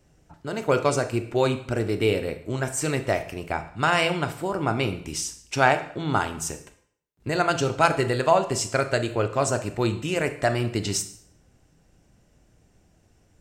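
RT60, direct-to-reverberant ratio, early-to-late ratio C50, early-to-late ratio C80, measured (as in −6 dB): 0.60 s, 9.0 dB, 12.5 dB, 15.5 dB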